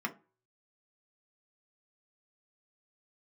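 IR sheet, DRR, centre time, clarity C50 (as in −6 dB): 1.5 dB, 7 ms, 17.5 dB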